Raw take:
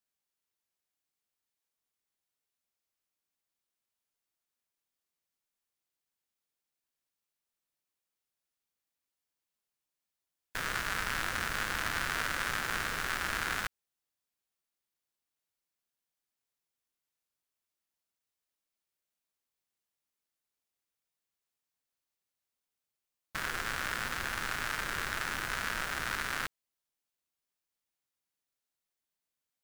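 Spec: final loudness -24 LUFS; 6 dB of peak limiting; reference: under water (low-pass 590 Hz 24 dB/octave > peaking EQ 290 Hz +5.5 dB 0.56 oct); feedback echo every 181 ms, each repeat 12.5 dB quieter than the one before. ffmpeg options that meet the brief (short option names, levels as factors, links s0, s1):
-af "alimiter=limit=0.0794:level=0:latency=1,lowpass=f=590:w=0.5412,lowpass=f=590:w=1.3066,equalizer=f=290:t=o:w=0.56:g=5.5,aecho=1:1:181|362|543:0.237|0.0569|0.0137,volume=17.8"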